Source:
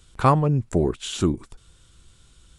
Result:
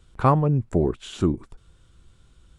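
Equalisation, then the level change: high shelf 2600 Hz -11.5 dB; 0.0 dB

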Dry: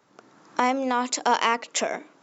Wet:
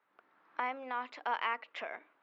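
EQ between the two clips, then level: band-pass 2100 Hz, Q 0.84; air absorption 400 m; -5.5 dB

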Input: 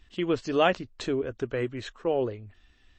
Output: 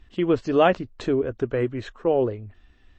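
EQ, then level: high shelf 2200 Hz -11 dB; +6.0 dB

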